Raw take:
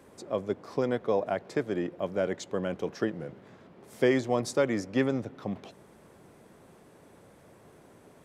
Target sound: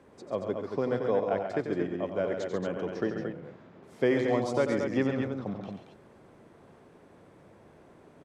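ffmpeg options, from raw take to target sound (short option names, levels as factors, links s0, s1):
-af "aemphasis=mode=reproduction:type=50fm,aecho=1:1:90.38|137|227.4:0.355|0.447|0.501,volume=0.794"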